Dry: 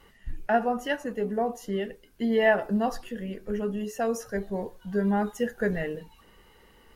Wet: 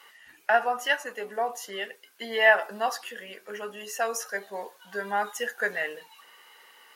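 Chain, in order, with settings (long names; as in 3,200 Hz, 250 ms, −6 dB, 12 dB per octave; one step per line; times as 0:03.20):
high-pass filter 950 Hz 12 dB per octave
level +7.5 dB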